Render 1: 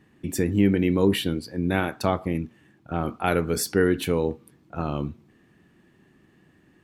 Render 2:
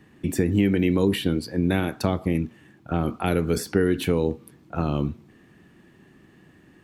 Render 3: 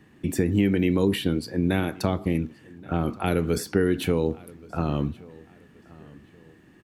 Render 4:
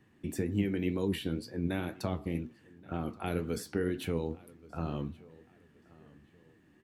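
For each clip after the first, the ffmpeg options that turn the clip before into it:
-filter_complex "[0:a]acrossover=split=450|2800[a][b][c];[a]acompressor=threshold=-23dB:ratio=4[d];[b]acompressor=threshold=-35dB:ratio=4[e];[c]acompressor=threshold=-40dB:ratio=4[f];[d][e][f]amix=inputs=3:normalize=0,volume=5dB"
-filter_complex "[0:a]asplit=2[a][b];[b]adelay=1126,lowpass=f=4.5k:p=1,volume=-22.5dB,asplit=2[c][d];[d]adelay=1126,lowpass=f=4.5k:p=1,volume=0.36[e];[a][c][e]amix=inputs=3:normalize=0,volume=-1dB"
-af "flanger=delay=7.9:depth=6:regen=62:speed=2:shape=sinusoidal,volume=-5.5dB"

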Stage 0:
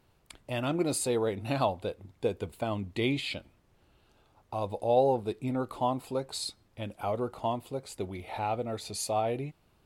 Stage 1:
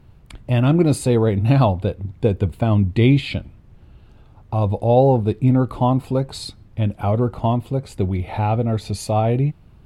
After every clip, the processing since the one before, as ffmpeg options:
-af "bass=f=250:g=14,treble=f=4k:g=-7,volume=8dB"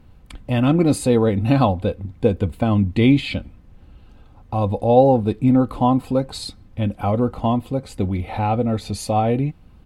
-af "aecho=1:1:3.9:0.41"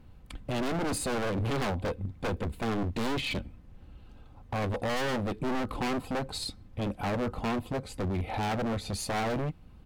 -af "aeval=exprs='(tanh(7.94*val(0)+0.5)-tanh(0.5))/7.94':c=same,aeval=exprs='0.0794*(abs(mod(val(0)/0.0794+3,4)-2)-1)':c=same,volume=-2.5dB"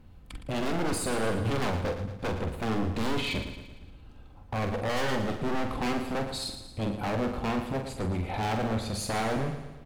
-filter_complex "[0:a]asplit=2[a][b];[b]adelay=45,volume=-7dB[c];[a][c]amix=inputs=2:normalize=0,aecho=1:1:114|228|342|456|570|684:0.316|0.164|0.0855|0.0445|0.0231|0.012"

